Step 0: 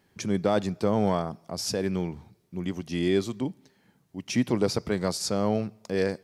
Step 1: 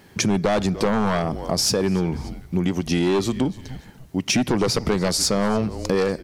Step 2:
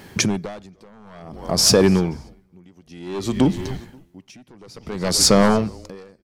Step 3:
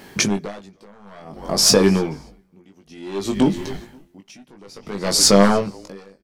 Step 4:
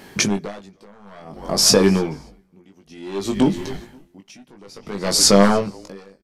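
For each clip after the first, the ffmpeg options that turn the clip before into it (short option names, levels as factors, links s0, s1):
-filter_complex "[0:a]asplit=3[s0][s1][s2];[s1]adelay=290,afreqshift=-130,volume=0.0841[s3];[s2]adelay=580,afreqshift=-260,volume=0.026[s4];[s0][s3][s4]amix=inputs=3:normalize=0,aeval=exprs='0.266*sin(PI/2*2.24*val(0)/0.266)':c=same,acompressor=threshold=0.0708:ratio=6,volume=1.78"
-filter_complex "[0:a]asplit=2[s0][s1];[s1]adelay=531,lowpass=f=2600:p=1,volume=0.106,asplit=2[s2][s3];[s3]adelay=531,lowpass=f=2600:p=1,volume=0.39,asplit=2[s4][s5];[s5]adelay=531,lowpass=f=2600:p=1,volume=0.39[s6];[s0][s2][s4][s6]amix=inputs=4:normalize=0,aeval=exprs='val(0)*pow(10,-34*(0.5-0.5*cos(2*PI*0.56*n/s))/20)':c=same,volume=2.37"
-filter_complex "[0:a]equalizer=f=88:t=o:w=1.1:g=-10.5,asplit=2[s0][s1];[s1]adelay=20,volume=0.562[s2];[s0][s2]amix=inputs=2:normalize=0"
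-af "aresample=32000,aresample=44100"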